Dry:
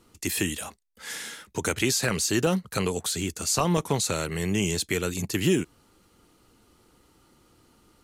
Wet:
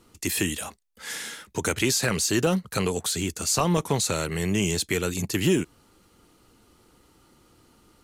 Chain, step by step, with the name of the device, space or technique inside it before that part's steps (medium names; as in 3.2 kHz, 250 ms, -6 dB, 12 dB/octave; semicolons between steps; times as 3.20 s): parallel distortion (in parallel at -13 dB: hard clipper -25 dBFS, distortion -8 dB)